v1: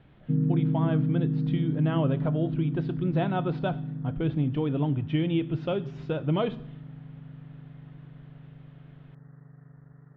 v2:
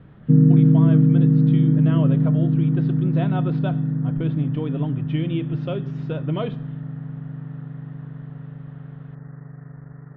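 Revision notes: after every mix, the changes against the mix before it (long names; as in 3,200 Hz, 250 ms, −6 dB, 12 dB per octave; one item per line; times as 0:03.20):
speech: add Butterworth band-reject 840 Hz, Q 7.4
background +11.5 dB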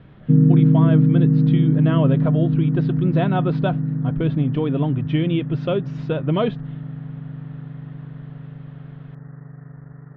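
speech +6.0 dB
reverb: off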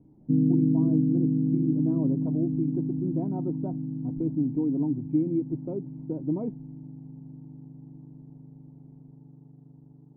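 master: add formant resonators in series u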